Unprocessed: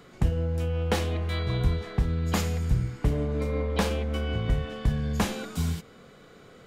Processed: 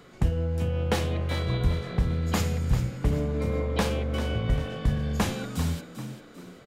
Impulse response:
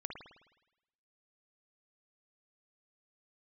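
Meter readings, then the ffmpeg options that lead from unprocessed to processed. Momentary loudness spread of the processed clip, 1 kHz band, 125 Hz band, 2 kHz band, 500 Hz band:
4 LU, +0.5 dB, +0.5 dB, +0.5 dB, +0.5 dB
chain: -filter_complex "[0:a]asplit=5[a][b][c][d][e];[b]adelay=394,afreqshift=49,volume=-11dB[f];[c]adelay=788,afreqshift=98,volume=-19.4dB[g];[d]adelay=1182,afreqshift=147,volume=-27.8dB[h];[e]adelay=1576,afreqshift=196,volume=-36.2dB[i];[a][f][g][h][i]amix=inputs=5:normalize=0"

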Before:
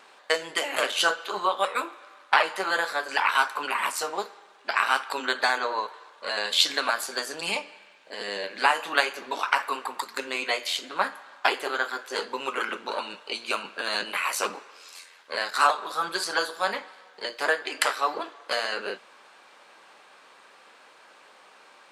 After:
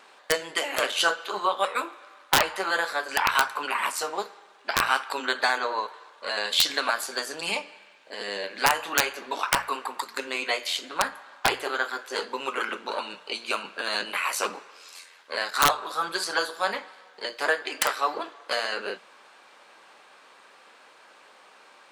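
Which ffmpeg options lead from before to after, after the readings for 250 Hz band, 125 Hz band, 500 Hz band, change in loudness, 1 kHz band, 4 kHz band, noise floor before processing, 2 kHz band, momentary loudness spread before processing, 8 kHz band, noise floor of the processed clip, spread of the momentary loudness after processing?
+1.0 dB, n/a, 0.0 dB, 0.0 dB, -0.5 dB, +0.5 dB, -54 dBFS, -0.5 dB, 13 LU, +3.0 dB, -54 dBFS, 13 LU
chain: -af "aeval=exprs='(mod(2.82*val(0)+1,2)-1)/2.82':c=same,bandreject=f=60:t=h:w=6,bandreject=f=120:t=h:w=6,bandreject=f=180:t=h:w=6"

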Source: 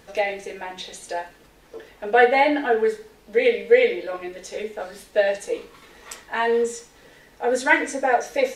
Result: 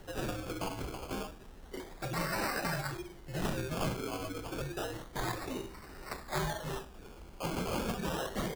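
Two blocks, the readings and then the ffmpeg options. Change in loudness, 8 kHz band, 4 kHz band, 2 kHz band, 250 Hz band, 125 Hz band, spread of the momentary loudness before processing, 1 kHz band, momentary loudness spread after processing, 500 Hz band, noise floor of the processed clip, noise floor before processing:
-16.0 dB, -7.0 dB, -7.5 dB, -16.5 dB, -7.0 dB, n/a, 18 LU, -15.0 dB, 12 LU, -19.0 dB, -52 dBFS, -53 dBFS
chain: -filter_complex "[0:a]afftfilt=real='re*lt(hypot(re,im),0.2)':imag='im*lt(hypot(re,im),0.2)':win_size=1024:overlap=0.75,lowshelf=f=160:g=12,asplit=2[a][b];[b]adelay=100,highpass=300,lowpass=3.4k,asoftclip=type=hard:threshold=-24.5dB,volume=-19dB[c];[a][c]amix=inputs=2:normalize=0,acrusher=samples=18:mix=1:aa=0.000001:lfo=1:lforange=10.8:lforate=0.3,afreqshift=-77,volume=-3dB"

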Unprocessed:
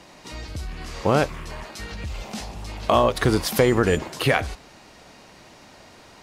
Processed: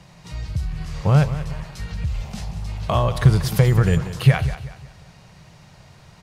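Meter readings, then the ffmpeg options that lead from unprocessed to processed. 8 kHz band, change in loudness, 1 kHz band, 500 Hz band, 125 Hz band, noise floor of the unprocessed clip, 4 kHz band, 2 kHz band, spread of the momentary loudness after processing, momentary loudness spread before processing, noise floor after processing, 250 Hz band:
-3.0 dB, +2.0 dB, -3.5 dB, -5.0 dB, +11.0 dB, -49 dBFS, -3.5 dB, -3.5 dB, 16 LU, 17 LU, -49 dBFS, +1.0 dB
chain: -filter_complex "[0:a]lowshelf=f=200:t=q:w=3:g=9.5,asplit=2[a][b];[b]aecho=0:1:185|370|555|740:0.224|0.0806|0.029|0.0104[c];[a][c]amix=inputs=2:normalize=0,volume=-3.5dB"

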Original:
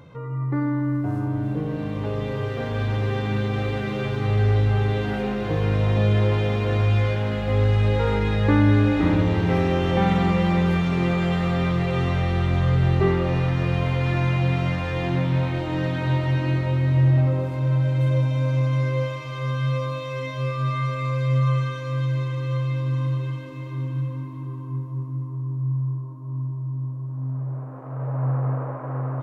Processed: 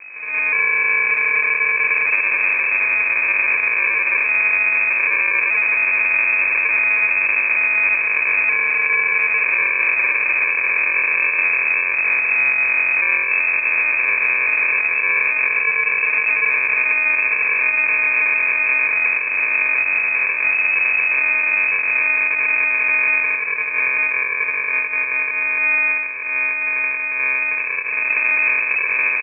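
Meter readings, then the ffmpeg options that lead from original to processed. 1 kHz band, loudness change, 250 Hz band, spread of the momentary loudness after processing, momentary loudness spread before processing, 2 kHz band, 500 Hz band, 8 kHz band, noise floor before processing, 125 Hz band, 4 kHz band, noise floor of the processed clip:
+2.0 dB, +8.0 dB, under -20 dB, 3 LU, 10 LU, +21.5 dB, -8.5 dB, n/a, -33 dBFS, under -35 dB, under -30 dB, -23 dBFS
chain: -af "highpass=f=49:p=1,equalizer=f=64:w=2.3:g=-6,aecho=1:1:3.2:0.92,acontrast=34,alimiter=limit=-14.5dB:level=0:latency=1:release=131,dynaudnorm=f=180:g=3:m=12dB,aeval=exprs='val(0)+0.0224*(sin(2*PI*50*n/s)+sin(2*PI*2*50*n/s)/2+sin(2*PI*3*50*n/s)/3+sin(2*PI*4*50*n/s)/4+sin(2*PI*5*50*n/s)/5)':c=same,aresample=11025,acrusher=samples=18:mix=1:aa=0.000001,aresample=44100,aeval=exprs='0.335*(abs(mod(val(0)/0.335+3,4)-2)-1)':c=same,lowpass=f=2.2k:t=q:w=0.5098,lowpass=f=2.2k:t=q:w=0.6013,lowpass=f=2.2k:t=q:w=0.9,lowpass=f=2.2k:t=q:w=2.563,afreqshift=-2600,volume=-3dB"

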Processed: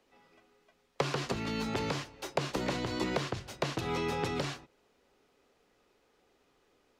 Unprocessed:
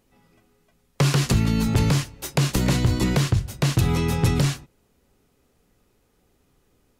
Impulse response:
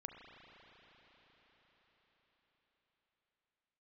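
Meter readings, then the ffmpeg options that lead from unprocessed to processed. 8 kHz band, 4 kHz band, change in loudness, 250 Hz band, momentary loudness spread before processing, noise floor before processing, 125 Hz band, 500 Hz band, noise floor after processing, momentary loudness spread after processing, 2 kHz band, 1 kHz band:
-15.0 dB, -9.0 dB, -12.5 dB, -13.0 dB, 4 LU, -66 dBFS, -19.5 dB, -5.0 dB, -71 dBFS, 4 LU, -7.5 dB, -4.5 dB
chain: -filter_complex "[0:a]acrossover=split=98|1200[a][b][c];[a]acompressor=threshold=-33dB:ratio=4[d];[b]acompressor=threshold=-24dB:ratio=4[e];[c]acompressor=threshold=-38dB:ratio=4[f];[d][e][f]amix=inputs=3:normalize=0,acrossover=split=310 6000:gain=0.158 1 0.178[g][h][i];[g][h][i]amix=inputs=3:normalize=0"

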